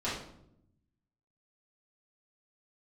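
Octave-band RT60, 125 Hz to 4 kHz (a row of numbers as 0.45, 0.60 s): 1.5, 1.2, 0.85, 0.65, 0.55, 0.50 s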